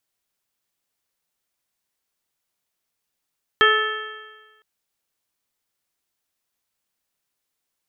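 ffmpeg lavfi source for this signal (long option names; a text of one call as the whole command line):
ffmpeg -f lavfi -i "aevalsrc='0.126*pow(10,-3*t/1.3)*sin(2*PI*429.54*t)+0.0266*pow(10,-3*t/1.3)*sin(2*PI*862.28*t)+0.178*pow(10,-3*t/1.3)*sin(2*PI*1301.4*t)+0.2*pow(10,-3*t/1.3)*sin(2*PI*1749.98*t)+0.0316*pow(10,-3*t/1.3)*sin(2*PI*2211.02*t)+0.0355*pow(10,-3*t/1.3)*sin(2*PI*2687.33*t)+0.119*pow(10,-3*t/1.3)*sin(2*PI*3181.62*t)':duration=1.01:sample_rate=44100" out.wav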